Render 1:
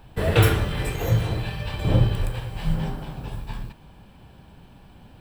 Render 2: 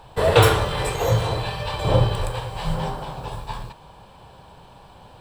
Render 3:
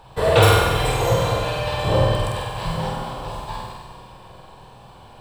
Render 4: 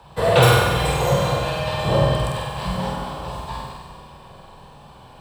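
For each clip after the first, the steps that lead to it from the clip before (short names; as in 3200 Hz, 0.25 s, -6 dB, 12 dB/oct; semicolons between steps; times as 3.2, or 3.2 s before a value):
graphic EQ 125/250/500/1000/4000/8000 Hz +3/-5/+9/+12/+8/+8 dB; gain -2.5 dB
on a send: flutter echo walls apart 8.3 m, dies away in 0.85 s; on the sum: Schroeder reverb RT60 2.8 s, combs from 31 ms, DRR 6 dB; gain -1.5 dB
frequency shift +21 Hz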